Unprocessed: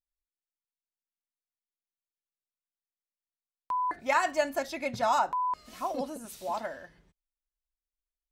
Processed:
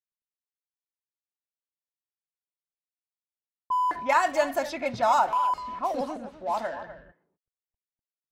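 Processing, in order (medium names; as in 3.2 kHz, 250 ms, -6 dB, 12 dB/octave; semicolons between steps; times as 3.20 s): companding laws mixed up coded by mu; dynamic bell 850 Hz, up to +4 dB, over -36 dBFS, Q 0.9; level-controlled noise filter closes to 550 Hz, open at -24 dBFS; speakerphone echo 250 ms, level -12 dB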